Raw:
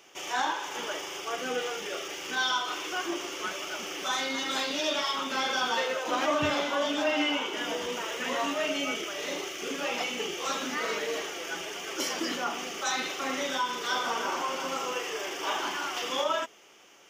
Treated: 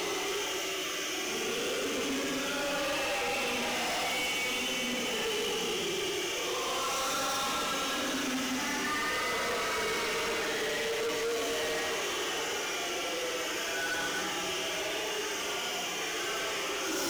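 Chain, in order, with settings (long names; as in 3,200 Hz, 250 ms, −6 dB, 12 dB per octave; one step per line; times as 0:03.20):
extreme stretch with random phases 6.6×, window 0.10 s, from 0:09.41
gain into a clipping stage and back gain 35 dB
level +5 dB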